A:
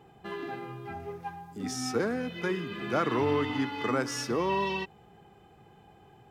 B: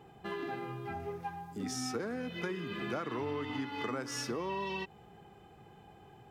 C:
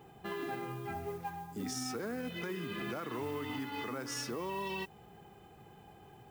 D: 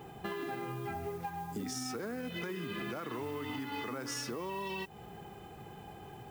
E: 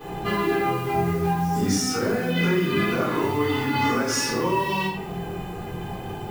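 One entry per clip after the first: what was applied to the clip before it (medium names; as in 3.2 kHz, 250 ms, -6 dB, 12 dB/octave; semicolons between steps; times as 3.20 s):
compression 5:1, threshold -34 dBFS, peak gain reduction 11 dB
modulation noise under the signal 25 dB; peak limiter -30 dBFS, peak gain reduction 6.5 dB; treble shelf 12 kHz +8.5 dB
compression, threshold -43 dBFS, peak gain reduction 8 dB; trim +7 dB
chorus 0.46 Hz, delay 18.5 ms, depth 4.5 ms; pre-echo 277 ms -21 dB; reverberation RT60 0.65 s, pre-delay 3 ms, DRR -12 dB; trim +6 dB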